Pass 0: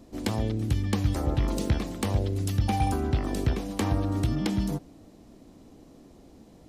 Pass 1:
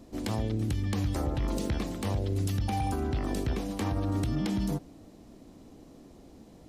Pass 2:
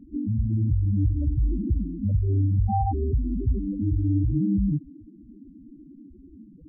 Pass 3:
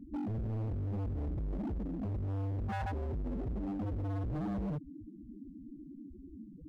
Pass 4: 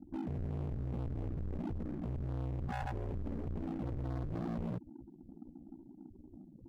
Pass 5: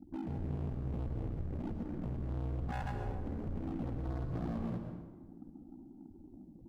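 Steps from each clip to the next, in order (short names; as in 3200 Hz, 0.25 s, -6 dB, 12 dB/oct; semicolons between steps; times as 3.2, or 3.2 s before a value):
limiter -21.5 dBFS, peak gain reduction 8 dB
loudest bins only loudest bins 4; gain +8.5 dB
in parallel at -1 dB: compressor 10:1, threshold -32 dBFS, peak gain reduction 15 dB; on the sum: hard clip -26.5 dBFS, distortion -7 dB; gain -7.5 dB
added harmonics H 7 -25 dB, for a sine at -33.5 dBFS; ring modulator 30 Hz; gain +1 dB
reverb RT60 1.3 s, pre-delay 0.103 s, DRR 5 dB; gain -1 dB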